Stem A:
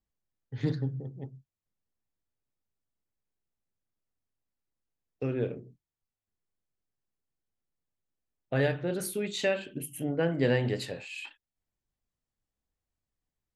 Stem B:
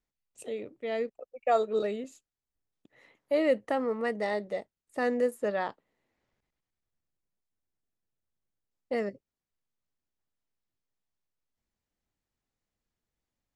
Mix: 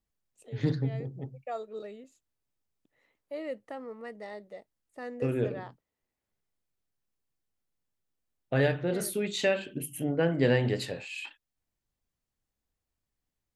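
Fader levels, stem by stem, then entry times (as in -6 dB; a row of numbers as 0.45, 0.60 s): +1.5, -11.5 dB; 0.00, 0.00 s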